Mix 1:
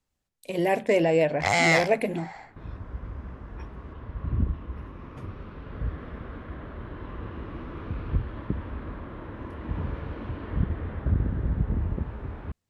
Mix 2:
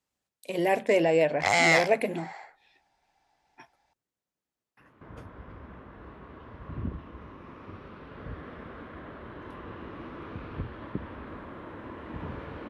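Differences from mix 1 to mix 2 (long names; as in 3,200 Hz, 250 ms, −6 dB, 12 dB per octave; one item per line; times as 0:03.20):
second sound: entry +2.45 s
master: add high-pass filter 250 Hz 6 dB per octave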